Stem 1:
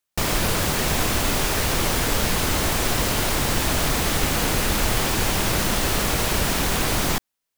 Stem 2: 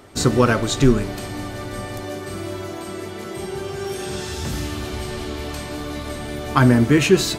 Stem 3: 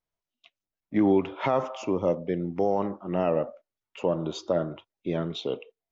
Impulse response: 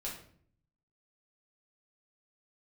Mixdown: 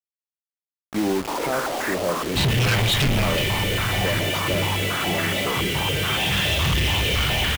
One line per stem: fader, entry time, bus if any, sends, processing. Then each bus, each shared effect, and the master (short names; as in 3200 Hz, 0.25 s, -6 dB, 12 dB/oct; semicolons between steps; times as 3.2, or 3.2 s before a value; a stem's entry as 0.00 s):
-4.5 dB, 1.10 s, no send, steep high-pass 230 Hz 72 dB/oct; stepped low-pass 7.1 Hz 390–1800 Hz
-4.0 dB, 2.20 s, send -15 dB, EQ curve 190 Hz 0 dB, 270 Hz -23 dB, 880 Hz -28 dB, 2000 Hz +6 dB, 3100 Hz +11 dB, 6400 Hz -23 dB; sine folder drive 10 dB, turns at -3 dBFS
+0.5 dB, 0.00 s, send -13.5 dB, dry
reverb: on, RT60 0.55 s, pre-delay 5 ms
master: soft clip -17.5 dBFS, distortion -7 dB; bit-crush 5-bit